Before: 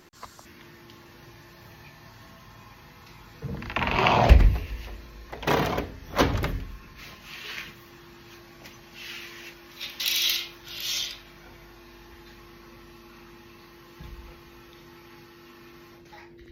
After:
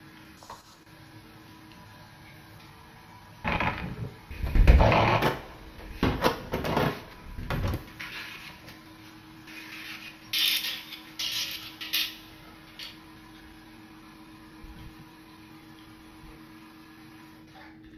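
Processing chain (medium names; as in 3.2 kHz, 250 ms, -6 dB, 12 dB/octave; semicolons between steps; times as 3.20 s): slices played last to first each 113 ms, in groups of 7; speed mistake 48 kHz file played as 44.1 kHz; two-slope reverb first 0.38 s, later 1.6 s, from -19 dB, DRR 3 dB; trim -2.5 dB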